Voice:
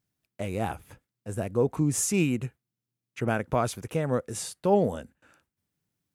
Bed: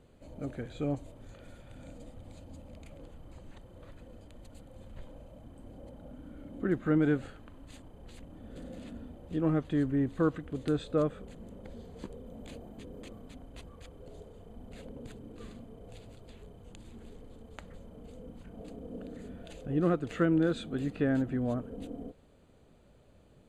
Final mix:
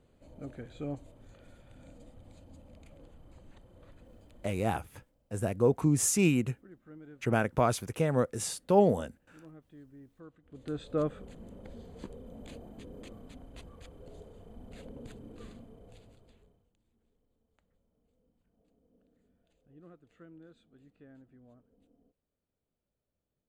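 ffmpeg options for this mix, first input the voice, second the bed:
ffmpeg -i stem1.wav -i stem2.wav -filter_complex "[0:a]adelay=4050,volume=-0.5dB[link_01];[1:a]volume=18dB,afade=type=out:start_time=4.62:duration=0.23:silence=0.112202,afade=type=in:start_time=10.42:duration=0.65:silence=0.0707946,afade=type=out:start_time=15.35:duration=1.35:silence=0.0501187[link_02];[link_01][link_02]amix=inputs=2:normalize=0" out.wav

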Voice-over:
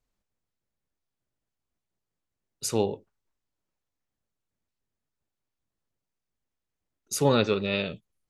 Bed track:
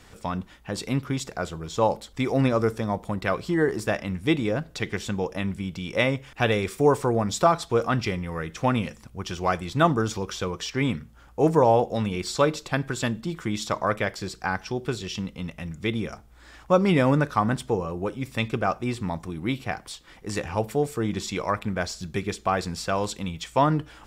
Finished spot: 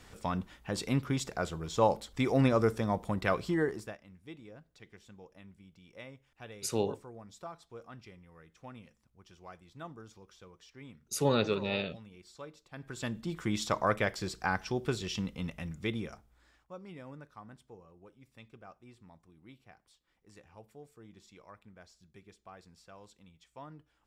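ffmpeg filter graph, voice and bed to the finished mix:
ffmpeg -i stem1.wav -i stem2.wav -filter_complex "[0:a]adelay=4000,volume=-5.5dB[link_01];[1:a]volume=17.5dB,afade=type=out:start_time=3.41:duration=0.56:silence=0.0841395,afade=type=in:start_time=12.71:duration=0.79:silence=0.0841395,afade=type=out:start_time=15.46:duration=1.22:silence=0.0668344[link_02];[link_01][link_02]amix=inputs=2:normalize=0" out.wav

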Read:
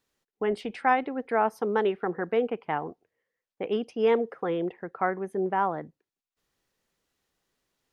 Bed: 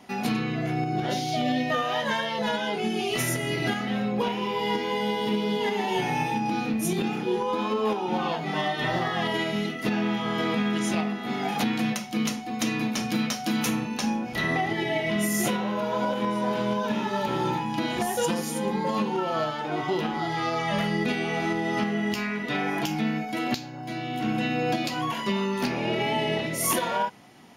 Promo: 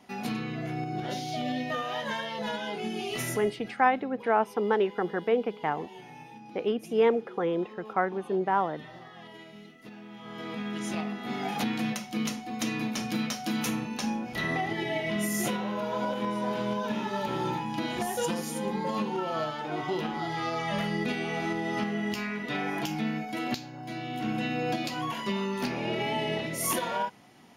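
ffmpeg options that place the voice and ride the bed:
ffmpeg -i stem1.wav -i stem2.wav -filter_complex "[0:a]adelay=2950,volume=0dB[link_01];[1:a]volume=10.5dB,afade=type=out:start_time=3.3:duration=0.24:silence=0.188365,afade=type=in:start_time=10.09:duration=1.19:silence=0.149624[link_02];[link_01][link_02]amix=inputs=2:normalize=0" out.wav

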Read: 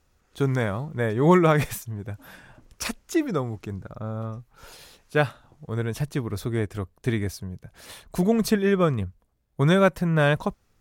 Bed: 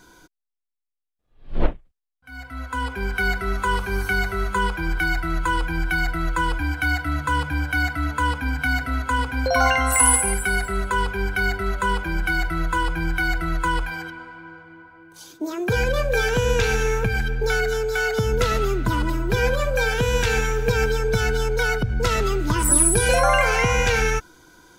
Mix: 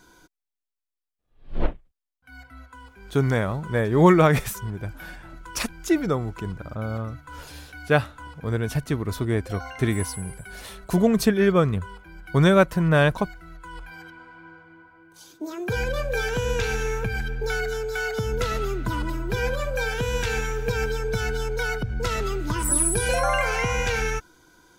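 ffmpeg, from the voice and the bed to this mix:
ffmpeg -i stem1.wav -i stem2.wav -filter_complex "[0:a]adelay=2750,volume=2dB[link_01];[1:a]volume=11dB,afade=type=out:start_time=2.06:duration=0.72:silence=0.158489,afade=type=in:start_time=13.68:duration=0.77:silence=0.188365[link_02];[link_01][link_02]amix=inputs=2:normalize=0" out.wav

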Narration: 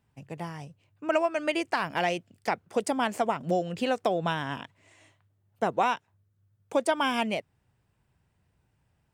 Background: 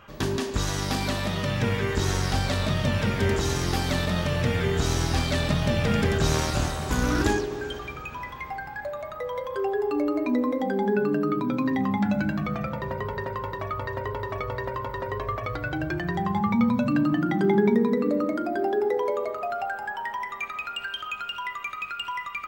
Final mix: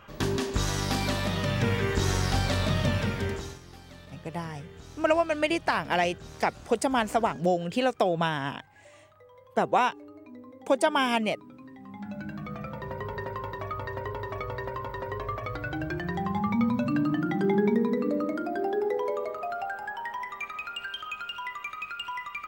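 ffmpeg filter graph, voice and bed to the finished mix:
ffmpeg -i stem1.wav -i stem2.wav -filter_complex "[0:a]adelay=3950,volume=2dB[link_01];[1:a]volume=18dB,afade=type=out:start_time=2.85:duration=0.75:silence=0.0841395,afade=type=in:start_time=11.81:duration=1.37:silence=0.112202[link_02];[link_01][link_02]amix=inputs=2:normalize=0" out.wav

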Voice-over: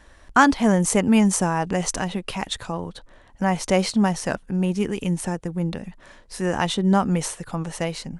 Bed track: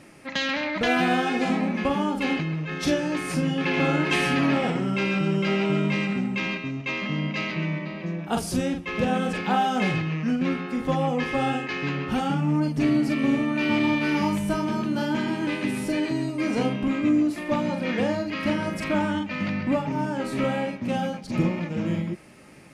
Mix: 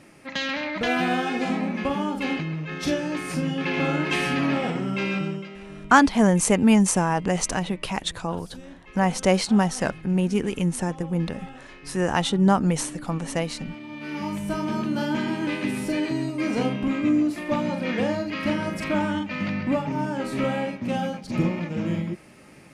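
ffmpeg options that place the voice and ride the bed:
ffmpeg -i stem1.wav -i stem2.wav -filter_complex "[0:a]adelay=5550,volume=0dB[link_01];[1:a]volume=16dB,afade=type=out:start_time=5.16:duration=0.33:silence=0.158489,afade=type=in:start_time=13.88:duration=0.89:silence=0.133352[link_02];[link_01][link_02]amix=inputs=2:normalize=0" out.wav

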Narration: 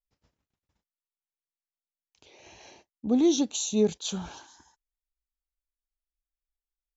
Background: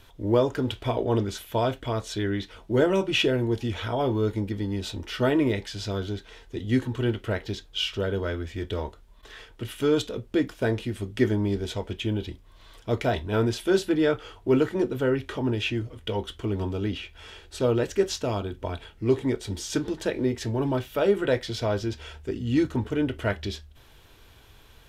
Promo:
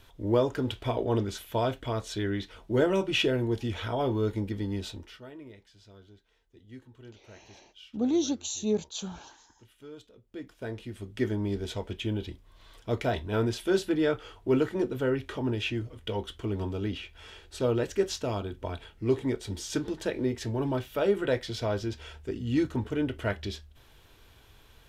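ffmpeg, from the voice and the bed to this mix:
ffmpeg -i stem1.wav -i stem2.wav -filter_complex "[0:a]adelay=4900,volume=-4dB[link_01];[1:a]volume=17dB,afade=type=out:start_time=4.77:duration=0.44:silence=0.0944061,afade=type=in:start_time=10.2:duration=1.49:silence=0.1[link_02];[link_01][link_02]amix=inputs=2:normalize=0" out.wav

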